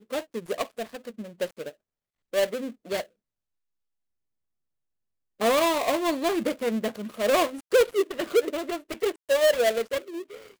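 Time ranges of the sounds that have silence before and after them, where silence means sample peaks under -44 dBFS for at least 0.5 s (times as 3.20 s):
2.33–3.05 s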